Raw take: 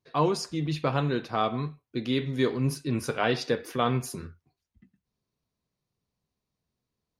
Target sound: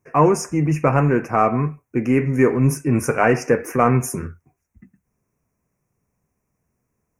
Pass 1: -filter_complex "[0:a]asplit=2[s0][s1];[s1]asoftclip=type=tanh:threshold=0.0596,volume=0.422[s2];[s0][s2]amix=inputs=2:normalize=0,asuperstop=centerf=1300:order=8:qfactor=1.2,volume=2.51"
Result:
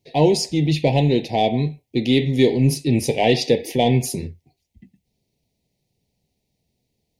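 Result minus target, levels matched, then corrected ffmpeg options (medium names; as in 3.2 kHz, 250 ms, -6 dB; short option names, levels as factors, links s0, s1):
4 kHz band +16.5 dB
-filter_complex "[0:a]asplit=2[s0][s1];[s1]asoftclip=type=tanh:threshold=0.0596,volume=0.422[s2];[s0][s2]amix=inputs=2:normalize=0,asuperstop=centerf=3800:order=8:qfactor=1.2,volume=2.51"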